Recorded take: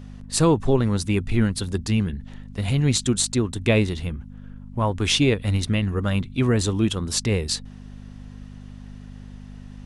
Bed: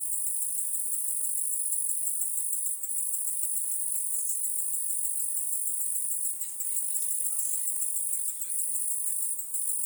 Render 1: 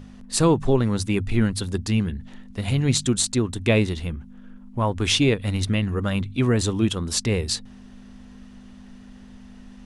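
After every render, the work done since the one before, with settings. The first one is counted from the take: de-hum 50 Hz, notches 3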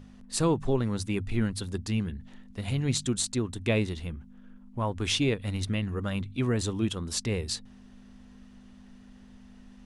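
trim -7 dB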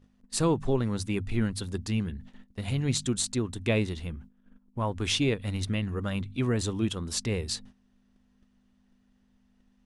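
gate -46 dBFS, range -15 dB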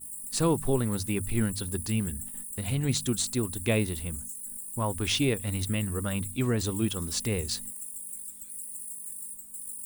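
add bed -10 dB

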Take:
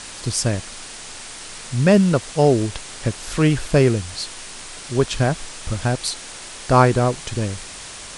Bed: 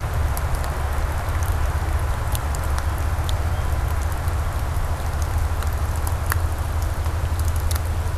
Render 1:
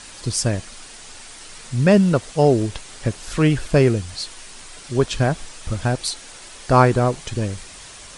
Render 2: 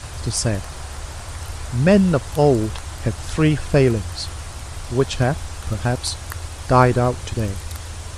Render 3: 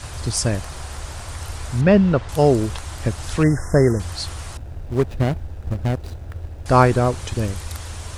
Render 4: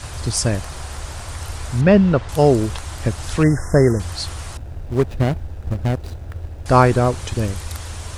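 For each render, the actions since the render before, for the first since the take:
noise reduction 6 dB, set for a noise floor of -36 dBFS
add bed -9.5 dB
1.81–2.29 s: low-pass 3.3 kHz; 3.43–4.00 s: brick-wall FIR band-stop 2.1–5 kHz; 4.57–6.66 s: median filter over 41 samples
trim +1.5 dB; peak limiter -1 dBFS, peak gain reduction 1 dB

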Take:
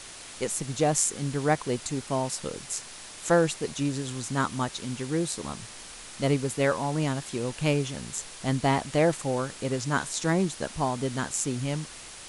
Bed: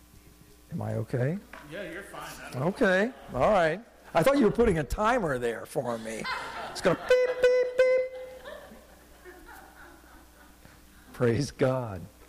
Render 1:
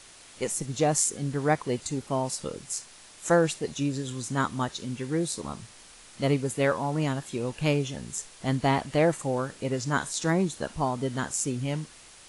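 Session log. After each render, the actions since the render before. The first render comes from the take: noise print and reduce 7 dB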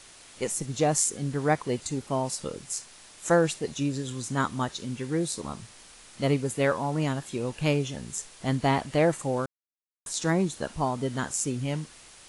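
9.46–10.06 s: mute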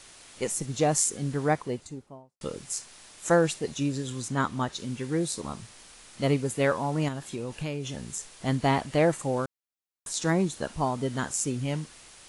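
1.32–2.41 s: studio fade out; 4.28–4.73 s: treble shelf 6.3 kHz -7.5 dB; 7.08–8.31 s: compression 4:1, threshold -29 dBFS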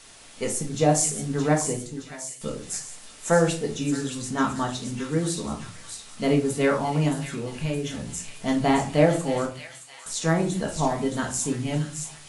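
feedback echo behind a high-pass 619 ms, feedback 51%, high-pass 2.3 kHz, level -6 dB; simulated room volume 290 m³, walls furnished, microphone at 1.6 m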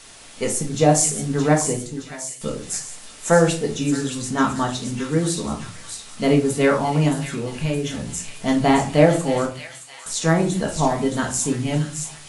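trim +4.5 dB

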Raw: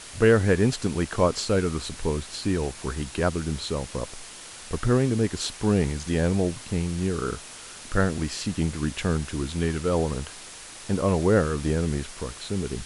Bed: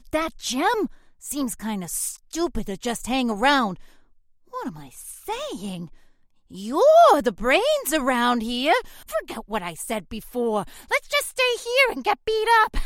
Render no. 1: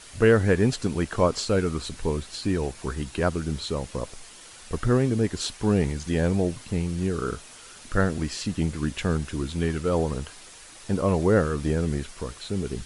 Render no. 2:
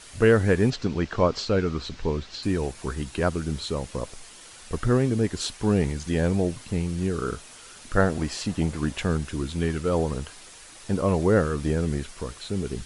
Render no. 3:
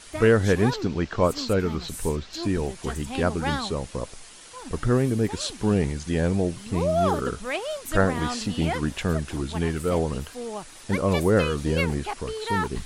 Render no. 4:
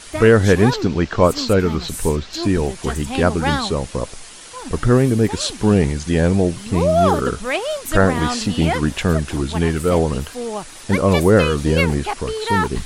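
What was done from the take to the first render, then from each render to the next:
noise reduction 6 dB, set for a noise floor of -43 dBFS
0.70–2.43 s: low-pass 5.8 kHz 24 dB/octave; 7.96–9.04 s: peaking EQ 740 Hz +6.5 dB 1.2 oct
add bed -10.5 dB
trim +7.5 dB; peak limiter -2 dBFS, peak gain reduction 2 dB

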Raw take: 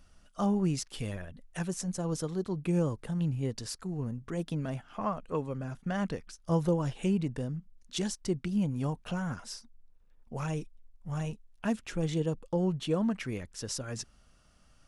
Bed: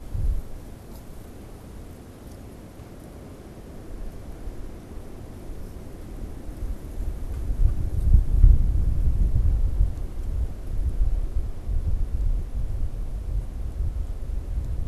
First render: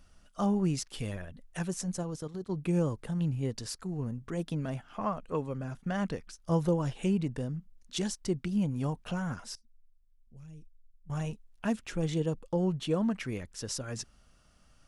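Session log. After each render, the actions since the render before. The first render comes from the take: 2.03–2.50 s: level held to a coarse grid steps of 12 dB; 9.55–11.10 s: amplifier tone stack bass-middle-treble 10-0-1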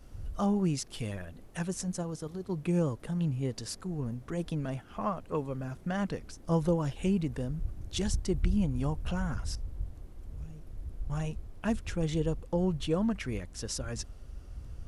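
add bed -15 dB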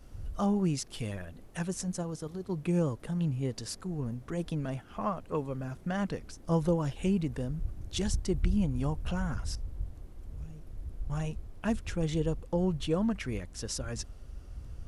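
no audible change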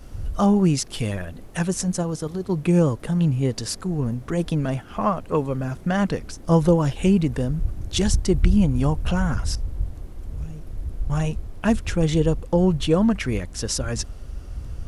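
trim +10.5 dB

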